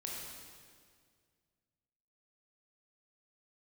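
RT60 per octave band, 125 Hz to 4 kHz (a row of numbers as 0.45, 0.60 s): 2.5, 2.2, 2.1, 1.8, 1.8, 1.7 s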